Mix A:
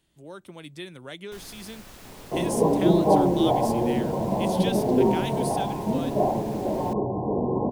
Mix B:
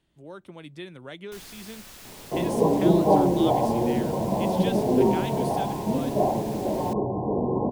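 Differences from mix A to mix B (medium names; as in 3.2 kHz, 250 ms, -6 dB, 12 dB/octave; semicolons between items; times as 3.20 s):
speech: add treble shelf 5 kHz -11.5 dB; first sound: add tilt shelf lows -4.5 dB, about 1.5 kHz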